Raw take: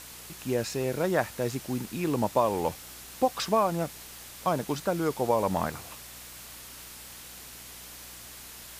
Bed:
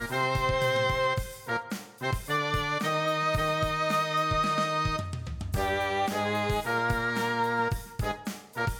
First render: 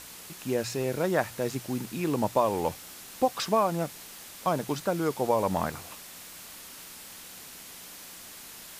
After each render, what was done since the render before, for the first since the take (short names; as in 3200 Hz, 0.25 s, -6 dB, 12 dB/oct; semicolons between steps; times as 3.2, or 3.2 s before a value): de-hum 60 Hz, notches 2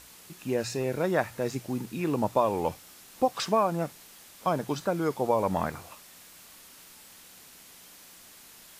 noise print and reduce 6 dB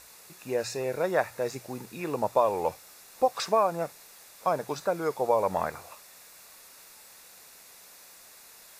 resonant low shelf 370 Hz -6.5 dB, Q 1.5; notch 3100 Hz, Q 5.5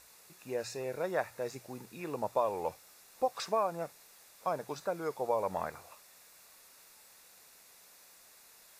gain -7 dB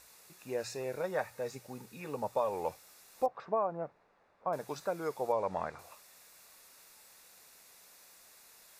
1.01–2.53 notch comb 340 Hz; 3.26–4.53 LPF 1200 Hz; 5.32–5.79 air absorption 87 m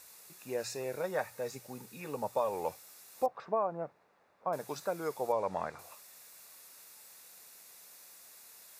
HPF 84 Hz; high shelf 7100 Hz +6.5 dB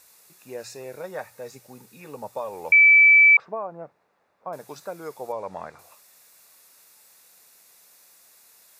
2.72–3.37 bleep 2310 Hz -10 dBFS